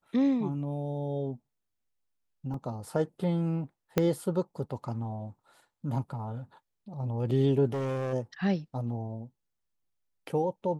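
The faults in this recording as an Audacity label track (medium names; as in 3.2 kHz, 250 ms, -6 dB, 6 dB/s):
2.540000	2.540000	dropout 3.2 ms
3.980000	3.980000	pop -11 dBFS
7.720000	8.140000	clipped -28.5 dBFS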